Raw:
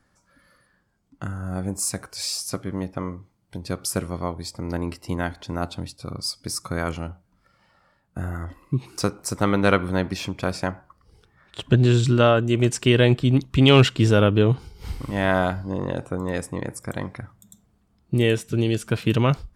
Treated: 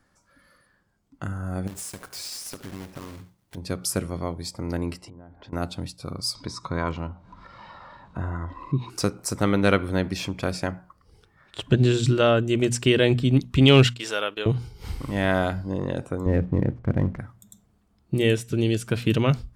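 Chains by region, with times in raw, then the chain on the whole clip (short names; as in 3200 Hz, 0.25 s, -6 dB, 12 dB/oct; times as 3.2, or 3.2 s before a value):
1.67–3.57 block floating point 3-bit + compressor 5:1, threshold -33 dBFS + echo 73 ms -15.5 dB
4.97–5.53 treble ducked by the level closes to 820 Hz, closed at -25.5 dBFS + LPF 10000 Hz 24 dB/oct + compressor 12:1, threshold -40 dBFS
6.35–8.9 air absorption 140 m + upward compressor, threshold -33 dBFS + small resonant body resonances 1000/3800 Hz, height 16 dB, ringing for 35 ms
13.87–14.46 HPF 810 Hz + gate -41 dBFS, range -14 dB
16.26–17.19 LPF 2800 Hz 24 dB/oct + tilt -3.5 dB/oct + backlash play -42.5 dBFS
whole clip: notches 60/120/180/240 Hz; dynamic EQ 1000 Hz, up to -5 dB, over -38 dBFS, Q 1.2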